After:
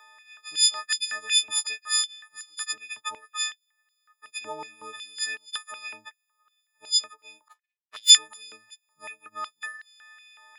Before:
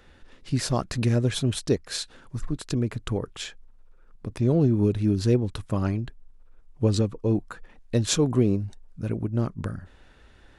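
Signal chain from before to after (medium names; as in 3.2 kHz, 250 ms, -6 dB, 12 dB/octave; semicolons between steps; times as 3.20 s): partials quantised in pitch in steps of 6 st; 7.48–8.10 s: power-law waveshaper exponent 2; step-sequenced high-pass 5.4 Hz 990–4100 Hz; trim -5 dB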